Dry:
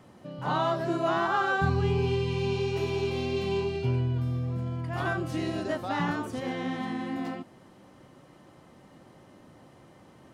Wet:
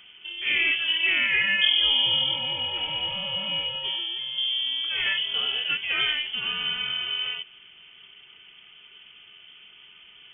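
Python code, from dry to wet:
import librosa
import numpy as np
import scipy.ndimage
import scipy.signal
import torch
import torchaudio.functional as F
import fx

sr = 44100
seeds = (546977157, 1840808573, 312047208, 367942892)

y = fx.low_shelf(x, sr, hz=250.0, db=-11.0, at=(2.35, 4.38))
y = fx.freq_invert(y, sr, carrier_hz=3300)
y = F.gain(torch.from_numpy(y), 3.5).numpy()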